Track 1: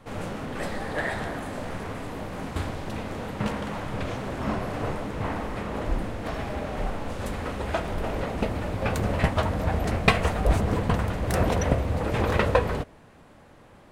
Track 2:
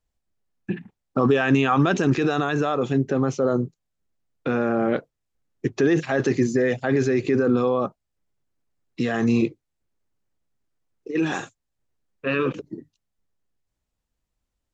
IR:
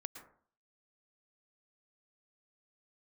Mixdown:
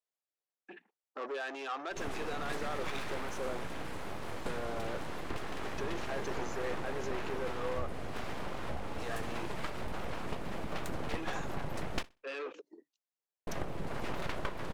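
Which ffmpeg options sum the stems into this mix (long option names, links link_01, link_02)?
-filter_complex "[0:a]acompressor=threshold=-29dB:ratio=4,aeval=exprs='abs(val(0))':channel_layout=same,adelay=1900,volume=-3.5dB,asplit=3[link_01][link_02][link_03];[link_01]atrim=end=12.03,asetpts=PTS-STARTPTS,afade=type=out:start_time=12.026:duration=0.004:curve=hsin[link_04];[link_02]atrim=start=12.03:end=13.47,asetpts=PTS-STARTPTS,volume=0[link_05];[link_03]atrim=start=13.47,asetpts=PTS-STARTPTS,afade=type=in:duration=0.004:curve=hsin[link_06];[link_04][link_05][link_06]concat=n=3:v=0:a=1,asplit=2[link_07][link_08];[link_08]volume=-23dB[link_09];[1:a]asoftclip=type=tanh:threshold=-20.5dB,highpass=frequency=390:width=0.5412,highpass=frequency=390:width=1.3066,volume=-11.5dB[link_10];[link_09]aecho=0:1:63|126|189|252:1|0.22|0.0484|0.0106[link_11];[link_07][link_10][link_11]amix=inputs=3:normalize=0"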